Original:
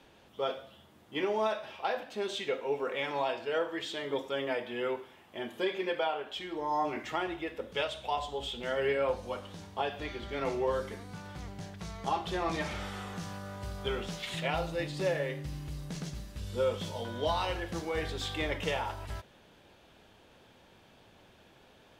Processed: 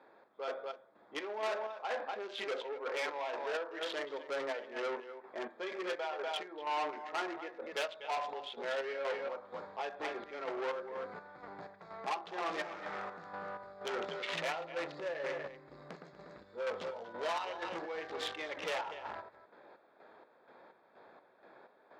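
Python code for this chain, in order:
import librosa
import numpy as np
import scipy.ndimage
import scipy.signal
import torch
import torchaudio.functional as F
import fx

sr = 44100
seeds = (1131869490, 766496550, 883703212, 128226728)

p1 = fx.wiener(x, sr, points=15)
p2 = p1 + fx.echo_single(p1, sr, ms=243, db=-10.0, dry=0)
p3 = fx.chopper(p2, sr, hz=2.1, depth_pct=60, duty_pct=50)
p4 = fx.rider(p3, sr, range_db=4, speed_s=0.5)
p5 = p3 + (p4 * librosa.db_to_amplitude(-1.0))
p6 = fx.air_absorb(p5, sr, metres=140.0)
p7 = 10.0 ** (-30.0 / 20.0) * np.tanh(p6 / 10.0 ** (-30.0 / 20.0))
p8 = scipy.signal.sosfilt(scipy.signal.butter(2, 550.0, 'highpass', fs=sr, output='sos'), p7)
p9 = fx.peak_eq(p8, sr, hz=820.0, db=-2.5, octaves=0.77)
p10 = fx.env_flatten(p9, sr, amount_pct=50, at=(13.93, 14.51))
y = p10 * librosa.db_to_amplitude(1.5)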